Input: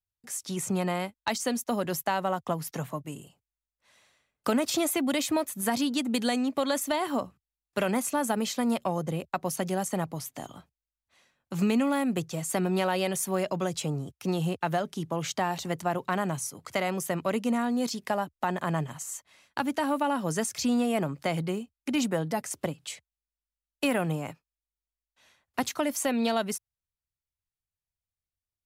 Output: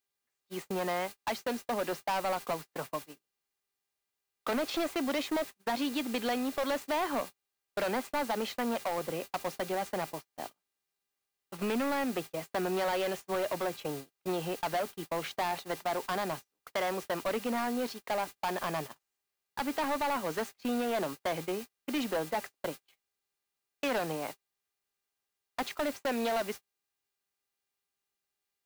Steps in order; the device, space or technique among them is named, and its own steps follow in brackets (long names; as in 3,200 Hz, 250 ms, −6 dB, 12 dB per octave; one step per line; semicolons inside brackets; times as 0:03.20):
aircraft radio (band-pass filter 370–2,500 Hz; hard clipping −29 dBFS, distortion −9 dB; hum with harmonics 400 Hz, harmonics 7, −59 dBFS 0 dB per octave; white noise bed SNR 13 dB; noise gate −40 dBFS, range −40 dB)
parametric band 4,200 Hz +3 dB 0.41 octaves
level +1.5 dB